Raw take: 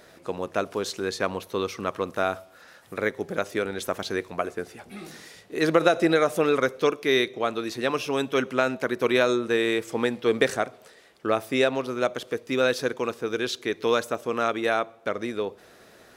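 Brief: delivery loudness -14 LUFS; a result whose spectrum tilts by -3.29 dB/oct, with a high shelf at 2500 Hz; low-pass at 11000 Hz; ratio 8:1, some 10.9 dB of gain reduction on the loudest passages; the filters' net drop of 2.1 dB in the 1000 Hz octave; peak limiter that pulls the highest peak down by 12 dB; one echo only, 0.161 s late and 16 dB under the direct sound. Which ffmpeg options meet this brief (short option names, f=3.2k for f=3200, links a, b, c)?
-af "lowpass=11k,equalizer=f=1k:t=o:g=-5,highshelf=f=2.5k:g=7.5,acompressor=threshold=-26dB:ratio=8,alimiter=limit=-24dB:level=0:latency=1,aecho=1:1:161:0.158,volume=22dB"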